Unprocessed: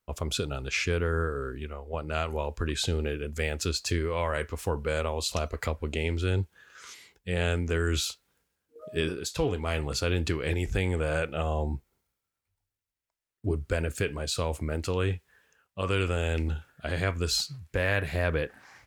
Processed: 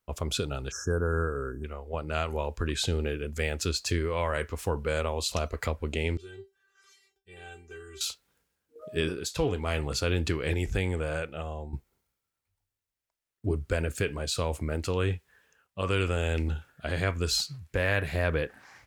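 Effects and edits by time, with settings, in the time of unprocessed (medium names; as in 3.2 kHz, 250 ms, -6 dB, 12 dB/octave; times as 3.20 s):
0.71–1.64 s: spectral selection erased 1.7–5.2 kHz
6.17–8.01 s: feedback comb 390 Hz, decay 0.21 s, mix 100%
10.65–11.73 s: fade out, to -11.5 dB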